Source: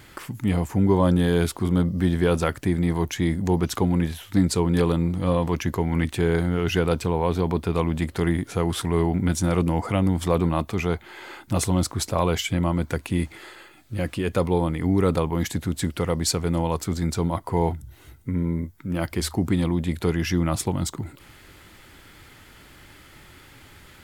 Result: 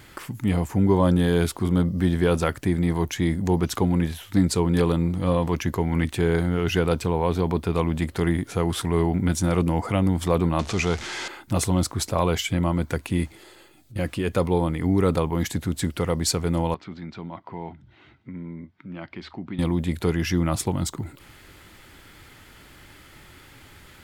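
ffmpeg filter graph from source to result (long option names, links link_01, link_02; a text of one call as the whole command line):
ffmpeg -i in.wav -filter_complex "[0:a]asettb=1/sr,asplit=3[link_01][link_02][link_03];[link_01]atrim=end=10.594[link_04];[link_02]atrim=start=10.59:end=11.28,asetpts=PTS-STARTPTS,afade=type=in:duration=0.004:curve=qsin,afade=type=out:start_time=0.686:duration=0.004:curve=qsin,aeval=exprs='val(0)+0.5*0.0251*sgn(val(0))':channel_layout=same,lowpass=frequency=6600:width=0.5412,lowpass=frequency=6600:width=1.3066,aemphasis=mode=production:type=75fm[link_05];[link_03]atrim=start=11.276[link_06];[link_04][link_05]acrossfade=duration=0.004:curve1=hsin:curve2=qsin[link_07];[link_07][link_06]acrossfade=duration=0.004:curve1=qsin:curve2=hsin,asettb=1/sr,asplit=3[link_08][link_09][link_10];[link_08]atrim=end=13.314[link_11];[link_09]atrim=start=13.31:end=13.96,asetpts=PTS-STARTPTS,afade=type=in:duration=0.004:curve=qsin,afade=type=out:start_time=0.646:duration=0.004:curve=qsin,equalizer=frequency=1600:width_type=o:width=1.9:gain=-9.5,acompressor=threshold=-43dB:ratio=4:attack=3.2:release=140:knee=1:detection=peak[link_12];[link_10]atrim=start=13.956[link_13];[link_11][link_12]acrossfade=duration=0.004:curve1=hsin:curve2=qsin[link_14];[link_14][link_13]acrossfade=duration=0.004:curve1=qsin:curve2=hsin,asettb=1/sr,asplit=3[link_15][link_16][link_17];[link_15]atrim=end=16.744[link_18];[link_16]atrim=start=16.74:end=19.59,asetpts=PTS-STARTPTS,afade=type=in:duration=0.004:curve=qsin,afade=type=out:start_time=2.846:duration=0.004:curve=qsin,highpass=160,equalizer=frequency=200:width_type=q:width=4:gain=3,equalizer=frequency=470:width_type=q:width=4:gain=-7,equalizer=frequency=2300:width_type=q:width=4:gain=3,lowpass=frequency=3800:width=0.5412,lowpass=frequency=3800:width=1.3066,acompressor=threshold=-48dB:ratio=1.5:attack=3.2:release=140:knee=1:detection=peak[link_19];[link_17]atrim=start=19.586[link_20];[link_18][link_19]acrossfade=duration=0.004:curve1=hsin:curve2=qsin[link_21];[link_21][link_20]acrossfade=duration=0.004:curve1=qsin:curve2=hsin" out.wav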